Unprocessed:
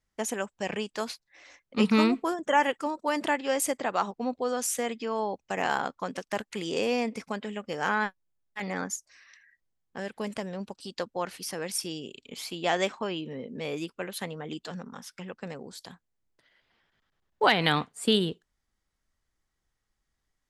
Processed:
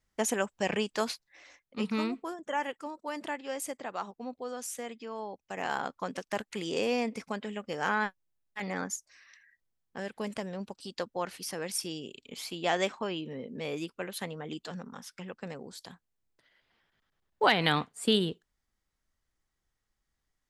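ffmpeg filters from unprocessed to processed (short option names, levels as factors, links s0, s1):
-af "volume=2.82,afade=t=out:st=1.08:d=0.7:silence=0.281838,afade=t=in:st=5.44:d=0.58:silence=0.446684"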